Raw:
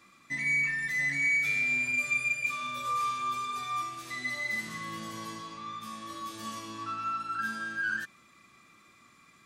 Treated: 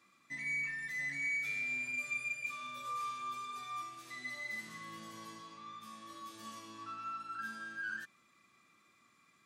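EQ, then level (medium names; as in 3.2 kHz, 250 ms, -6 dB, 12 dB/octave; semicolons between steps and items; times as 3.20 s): high-pass 130 Hz 6 dB/octave; -9.0 dB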